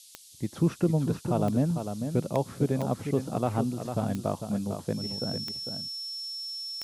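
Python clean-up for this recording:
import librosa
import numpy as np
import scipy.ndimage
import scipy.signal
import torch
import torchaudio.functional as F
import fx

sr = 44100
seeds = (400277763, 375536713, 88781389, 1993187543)

y = fx.fix_declick_ar(x, sr, threshold=10.0)
y = fx.notch(y, sr, hz=5400.0, q=30.0)
y = fx.noise_reduce(y, sr, print_start_s=0.01, print_end_s=0.51, reduce_db=26.0)
y = fx.fix_echo_inverse(y, sr, delay_ms=450, level_db=-7.5)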